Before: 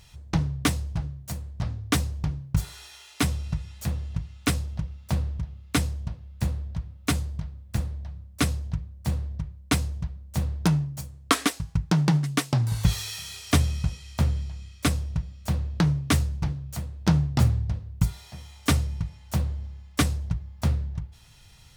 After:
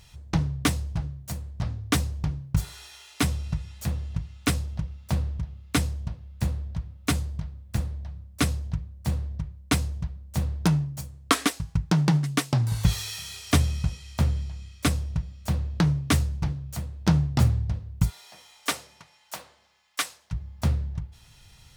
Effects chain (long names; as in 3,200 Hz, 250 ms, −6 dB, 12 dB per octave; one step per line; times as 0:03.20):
0:18.09–0:20.31: high-pass filter 410 Hz → 1,100 Hz 12 dB per octave